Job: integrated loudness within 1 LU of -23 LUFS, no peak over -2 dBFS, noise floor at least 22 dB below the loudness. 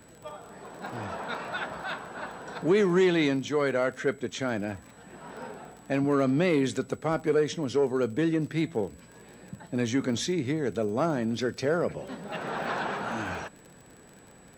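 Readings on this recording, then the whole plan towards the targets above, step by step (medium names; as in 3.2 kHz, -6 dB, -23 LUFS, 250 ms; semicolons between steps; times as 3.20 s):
tick rate 36 per s; steady tone 7.9 kHz; tone level -59 dBFS; loudness -28.5 LUFS; peak level -12.5 dBFS; loudness target -23.0 LUFS
-> de-click; band-stop 7.9 kHz, Q 30; trim +5.5 dB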